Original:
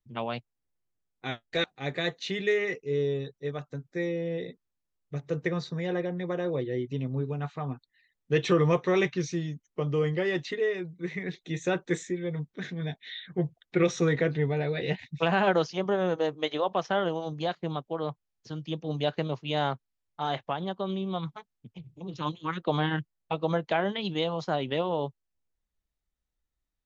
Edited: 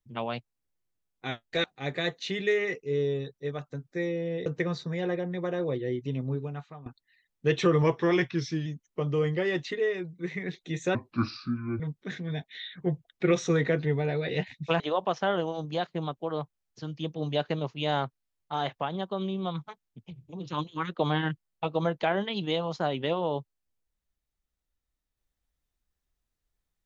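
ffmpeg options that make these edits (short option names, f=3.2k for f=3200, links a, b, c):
-filter_complex "[0:a]asplit=8[a][b][c][d][e][f][g][h];[a]atrim=end=4.462[i];[b]atrim=start=5.318:end=7.72,asetpts=PTS-STARTPTS,afade=t=out:st=1.832:d=0.57:silence=0.125893[j];[c]atrim=start=7.72:end=8.684,asetpts=PTS-STARTPTS,afade=t=in:d=0.004:c=hsin:silence=0.125893[k];[d]atrim=start=8.68:end=9.46,asetpts=PTS-STARTPTS,asetrate=41013,aresample=44100,atrim=end_sample=36987,asetpts=PTS-STARTPTS[l];[e]atrim=start=9.456:end=11.754[m];[f]atrim=start=11.75:end=12.32,asetpts=PTS-STARTPTS,asetrate=29547,aresample=44100[n];[g]atrim=start=12.316:end=15.322[o];[h]atrim=start=16.478[p];[j][k]concat=n=2:v=0:a=1[q];[i][q]acrossfade=d=0.004:c1=hsin:c2=hsin[r];[r][l]acrossfade=d=0.004:c1=hsin:c2=hsin[s];[s][m]acrossfade=d=0.004:c1=hsin:c2=hsin[t];[t][n]acrossfade=d=0.004:c1=hsin:c2=hsin[u];[u][o]acrossfade=d=0.004:c1=hsin:c2=hsin[v];[v][p]acrossfade=d=0.004:c1=hsin:c2=hsin"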